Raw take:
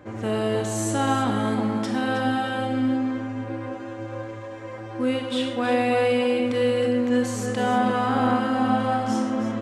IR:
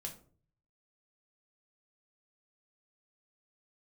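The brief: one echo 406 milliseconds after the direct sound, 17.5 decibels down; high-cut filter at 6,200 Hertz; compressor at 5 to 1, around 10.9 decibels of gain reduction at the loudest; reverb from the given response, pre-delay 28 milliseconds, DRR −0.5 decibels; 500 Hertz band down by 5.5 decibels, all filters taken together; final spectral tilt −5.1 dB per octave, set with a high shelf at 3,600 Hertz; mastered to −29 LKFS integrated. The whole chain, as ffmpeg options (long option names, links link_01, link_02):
-filter_complex "[0:a]lowpass=6200,equalizer=frequency=500:width_type=o:gain=-6,highshelf=frequency=3600:gain=5.5,acompressor=threshold=-31dB:ratio=5,aecho=1:1:406:0.133,asplit=2[link_01][link_02];[1:a]atrim=start_sample=2205,adelay=28[link_03];[link_02][link_03]afir=irnorm=-1:irlink=0,volume=3.5dB[link_04];[link_01][link_04]amix=inputs=2:normalize=0,volume=1dB"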